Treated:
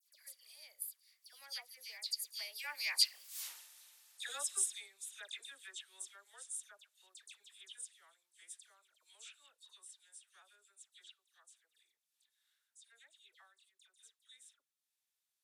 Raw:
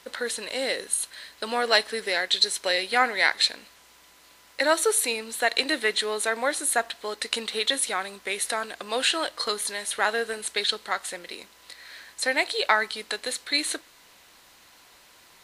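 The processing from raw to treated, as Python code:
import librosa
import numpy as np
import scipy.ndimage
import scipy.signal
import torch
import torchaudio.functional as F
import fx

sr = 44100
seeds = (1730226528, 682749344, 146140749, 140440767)

y = fx.doppler_pass(x, sr, speed_mps=44, closest_m=2.4, pass_at_s=3.41)
y = scipy.signal.sosfilt(scipy.signal.butter(2, 370.0, 'highpass', fs=sr, output='sos'), y)
y = fx.transient(y, sr, attack_db=0, sustain_db=-6)
y = np.diff(y, prepend=0.0)
y = fx.dispersion(y, sr, late='lows', ms=93.0, hz=2400.0)
y = y * librosa.db_to_amplitude(15.0)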